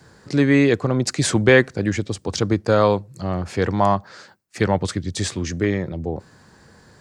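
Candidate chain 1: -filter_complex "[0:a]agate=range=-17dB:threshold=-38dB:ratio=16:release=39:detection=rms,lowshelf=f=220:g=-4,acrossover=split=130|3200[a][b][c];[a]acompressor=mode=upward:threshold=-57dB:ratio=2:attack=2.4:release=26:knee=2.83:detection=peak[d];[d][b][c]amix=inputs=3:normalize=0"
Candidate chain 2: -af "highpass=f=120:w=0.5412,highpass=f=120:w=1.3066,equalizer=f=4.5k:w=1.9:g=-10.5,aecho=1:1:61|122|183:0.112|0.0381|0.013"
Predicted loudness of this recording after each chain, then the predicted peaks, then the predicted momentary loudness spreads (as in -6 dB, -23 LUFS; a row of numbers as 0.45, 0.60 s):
-21.5, -21.0 LUFS; -2.5, -2.5 dBFS; 11, 13 LU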